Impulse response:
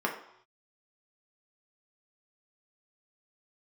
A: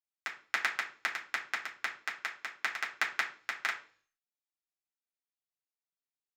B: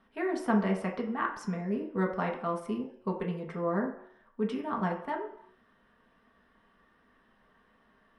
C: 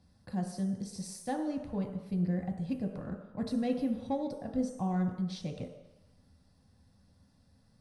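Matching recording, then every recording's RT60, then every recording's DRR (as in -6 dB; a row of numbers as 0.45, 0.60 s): B; 0.45 s, not exponential, 1.0 s; -4.0, -1.5, 1.5 dB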